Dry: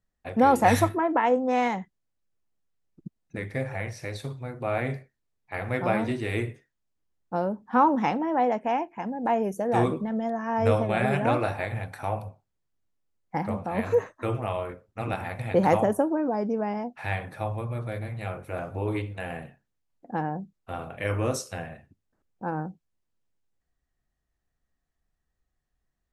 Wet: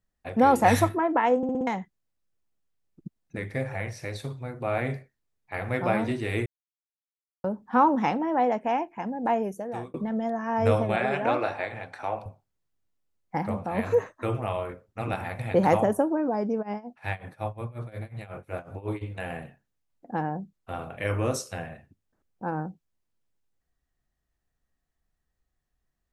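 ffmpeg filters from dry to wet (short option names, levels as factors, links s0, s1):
-filter_complex "[0:a]asettb=1/sr,asplit=3[s0][s1][s2];[s0]atrim=end=10.964[s3];[s1]atrim=start=10.96:end=12.26,asetpts=PTS-STARTPTS,afade=t=in:d=0.004:c=qsin,afade=t=out:st=1.296:d=0.004:c=qsin,acrossover=split=250 7300:gain=0.224 1 0.0708[s4][s5][s6];[s4][s5][s6]amix=inputs=3:normalize=0[s7];[s2]atrim=start=12.256[s8];[s3][s7]acrossfade=d=0.004:c1=hsin:c2=qsin[s9];[s9][s8]acrossfade=d=0.004:c1=qsin:c2=hsin,asplit=3[s10][s11][s12];[s10]afade=t=out:st=16.61:d=0.02[s13];[s11]tremolo=f=5.5:d=0.89,afade=t=in:st=16.61:d=0.02,afade=t=out:st=19.01:d=0.02[s14];[s12]afade=t=in:st=19.01:d=0.02[s15];[s13][s14][s15]amix=inputs=3:normalize=0,asplit=9[s16][s17][s18][s19][s20][s21][s22][s23][s24];[s16]atrim=end=1.432[s25];[s17]atrim=start=1.368:end=1.432[s26];[s18]atrim=start=1.368:end=1.432[s27];[s19]atrim=start=1.368:end=1.432[s28];[s20]atrim=start=1.368:end=1.432[s29];[s21]atrim=start=1.668:end=6.46,asetpts=PTS-STARTPTS,afade=t=out:st=4.788:d=0.004:c=hsin[s30];[s22]atrim=start=6.46:end=7.44,asetpts=PTS-STARTPTS,volume=0[s31];[s23]atrim=start=7.44:end=9.94,asetpts=PTS-STARTPTS,afade=t=in:d=0.004:c=hsin,afade=t=out:st=1.86:d=0.64[s32];[s24]atrim=start=9.94,asetpts=PTS-STARTPTS,afade=t=in:d=0.004:c=hsin[s33];[s25][s26]acrossfade=d=0.004:c1=hsin:c2=hsin[s34];[s34][s27]acrossfade=d=0.004:c1=hsin:c2=hsin[s35];[s35][s28]acrossfade=d=0.004:c1=hsin:c2=hsin[s36];[s36][s29]acrossfade=d=0.004:c1=hsin:c2=hsin[s37];[s30][s31][s32][s33]concat=n=4:v=0:a=1[s38];[s37][s38]acrossfade=d=0.004:c1=hsin:c2=hsin"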